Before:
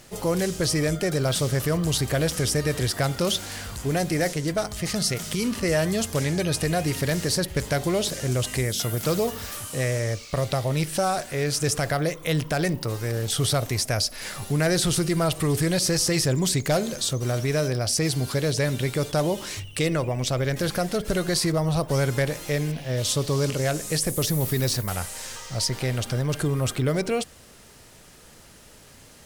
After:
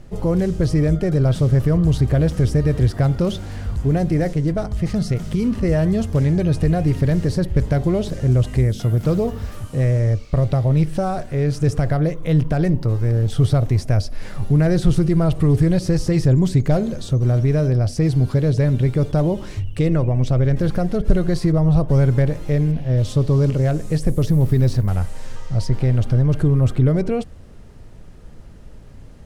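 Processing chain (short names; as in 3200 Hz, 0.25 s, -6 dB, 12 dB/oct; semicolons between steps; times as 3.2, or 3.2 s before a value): 13.76–14.38 crackle 180/s -44 dBFS; tilt -4 dB/oct; gain -1.5 dB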